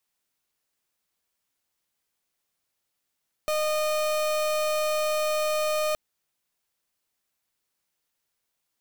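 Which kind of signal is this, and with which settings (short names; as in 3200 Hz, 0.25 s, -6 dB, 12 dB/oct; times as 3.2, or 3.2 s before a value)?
pulse 613 Hz, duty 36% -25.5 dBFS 2.47 s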